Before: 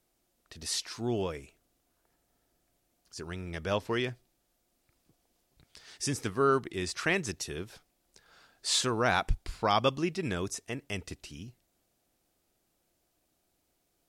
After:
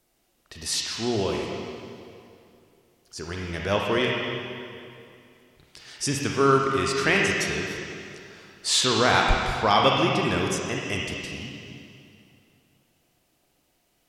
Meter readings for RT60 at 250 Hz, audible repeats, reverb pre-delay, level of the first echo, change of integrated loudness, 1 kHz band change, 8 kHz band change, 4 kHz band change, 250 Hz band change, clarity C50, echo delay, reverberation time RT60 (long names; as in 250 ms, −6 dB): 2.8 s, no echo audible, 31 ms, no echo audible, +7.5 dB, +8.5 dB, +6.5 dB, +9.0 dB, +7.5 dB, −1.0 dB, no echo audible, 2.5 s